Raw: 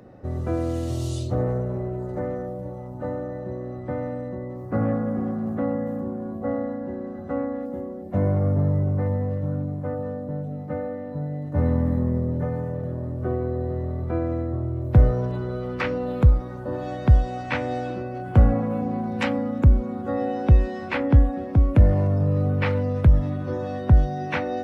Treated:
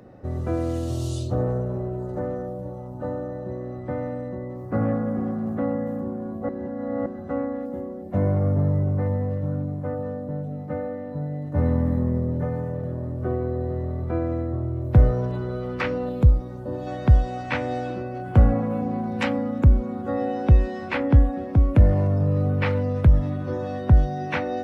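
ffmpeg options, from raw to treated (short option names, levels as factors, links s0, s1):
-filter_complex "[0:a]asettb=1/sr,asplit=3[s0][s1][s2];[s0]atrim=end=0.784[s3];[s1]atrim=start=0.78:end=3.5,asetpts=PTS-STARTPTS,afade=t=in:d=0.004:c=qsin,afade=t=out:st=2.716:d=0.004:c=qsin,equalizer=f=2100:t=o:w=0.3:g=-8.5[s4];[s2]atrim=start=3.496[s5];[s3][s4]acrossfade=d=0.004:c1=hsin:c2=qsin[s6];[s6][s5]acrossfade=d=0.004:c1=qsin:c2=hsin,asettb=1/sr,asplit=3[s7][s8][s9];[s7]atrim=end=16.094[s10];[s8]atrim=start=16.09:end=16.87,asetpts=PTS-STARTPTS,afade=t=in:d=0.004:c=qsin,afade=t=out:st=0.776:d=0.004:c=qsin,equalizer=f=1500:t=o:w=1.8:g=-8[s11];[s9]atrim=start=16.866[s12];[s10][s11]acrossfade=d=0.004:c1=hsin:c2=qsin[s13];[s13][s12]acrossfade=d=0.004:c1=qsin:c2=hsin,asplit=3[s14][s15][s16];[s14]atrim=end=6.492[s17];[s15]atrim=start=6.488:end=7.062,asetpts=PTS-STARTPTS,areverse[s18];[s16]atrim=start=7.058[s19];[s17][s18]acrossfade=d=0.004:c1=hsin:c2=hsin[s20];[s20][s19]acrossfade=d=0.004:c1=hsin:c2=hsin"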